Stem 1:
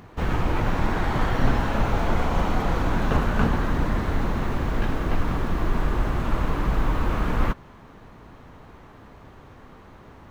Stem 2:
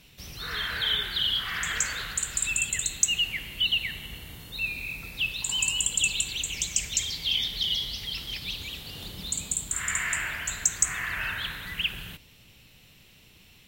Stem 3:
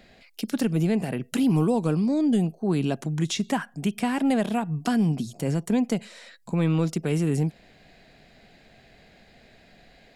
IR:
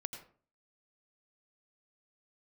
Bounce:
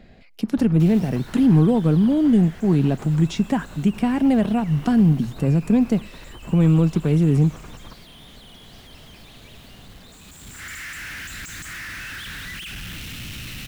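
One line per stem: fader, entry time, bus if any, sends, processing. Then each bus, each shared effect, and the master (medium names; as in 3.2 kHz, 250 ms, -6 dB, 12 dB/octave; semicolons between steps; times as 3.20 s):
-12.0 dB, 0.40 s, no send, compressor with a negative ratio -28 dBFS, ratio -1
-1.5 dB, 0.80 s, send -17 dB, one-bit comparator; high-order bell 650 Hz -10 dB; auto duck -18 dB, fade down 1.65 s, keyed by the third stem
-0.5 dB, 0.00 s, send -23.5 dB, bass shelf 270 Hz +11 dB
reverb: on, RT60 0.45 s, pre-delay 80 ms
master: treble shelf 4.2 kHz -8.5 dB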